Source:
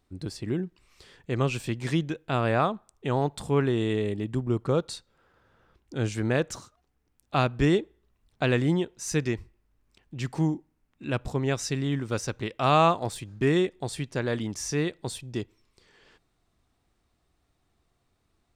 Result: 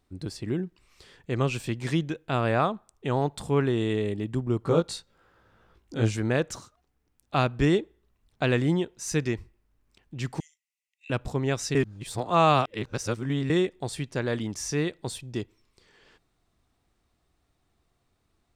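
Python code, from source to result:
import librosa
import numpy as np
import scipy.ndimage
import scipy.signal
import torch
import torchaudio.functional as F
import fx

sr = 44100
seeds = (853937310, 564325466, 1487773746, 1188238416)

y = fx.doubler(x, sr, ms=18.0, db=-2.0, at=(4.62, 6.17))
y = fx.cheby_ripple_highpass(y, sr, hz=1900.0, ripple_db=6, at=(10.4, 11.1))
y = fx.edit(y, sr, fx.reverse_span(start_s=11.75, length_s=1.75), tone=tone)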